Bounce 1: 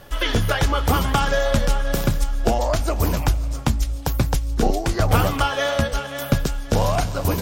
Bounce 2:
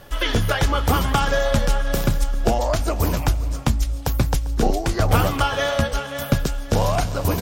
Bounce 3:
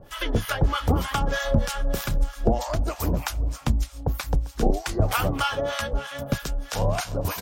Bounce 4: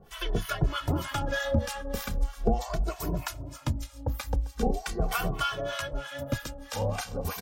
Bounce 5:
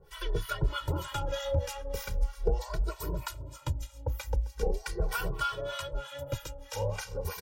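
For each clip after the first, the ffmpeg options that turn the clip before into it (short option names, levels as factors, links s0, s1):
-filter_complex "[0:a]asplit=2[s0][s1];[s1]adelay=396.5,volume=0.141,highshelf=f=4000:g=-8.92[s2];[s0][s2]amix=inputs=2:normalize=0"
-filter_complex "[0:a]acrossover=split=820[s0][s1];[s0]aeval=exprs='val(0)*(1-1/2+1/2*cos(2*PI*3.2*n/s))':c=same[s2];[s1]aeval=exprs='val(0)*(1-1/2-1/2*cos(2*PI*3.2*n/s))':c=same[s3];[s2][s3]amix=inputs=2:normalize=0"
-filter_complex "[0:a]asplit=2[s0][s1];[s1]adelay=2.2,afreqshift=-0.4[s2];[s0][s2]amix=inputs=2:normalize=1,volume=0.794"
-af "aecho=1:1:2.1:0.97,volume=0.473"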